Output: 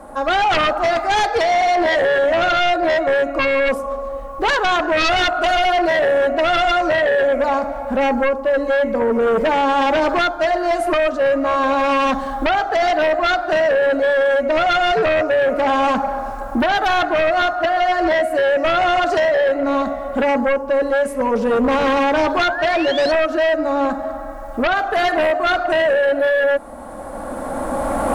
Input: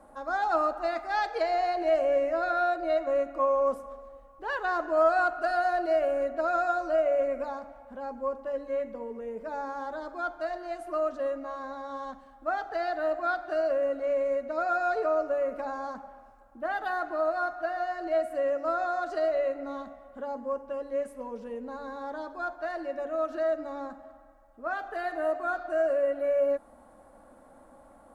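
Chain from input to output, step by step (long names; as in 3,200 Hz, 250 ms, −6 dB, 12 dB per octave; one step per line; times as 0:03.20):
camcorder AGC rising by 13 dB per second
sound drawn into the spectrogram rise, 0:22.37–0:23.12, 1,200–4,500 Hz −42 dBFS
sine wavefolder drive 12 dB, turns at −13 dBFS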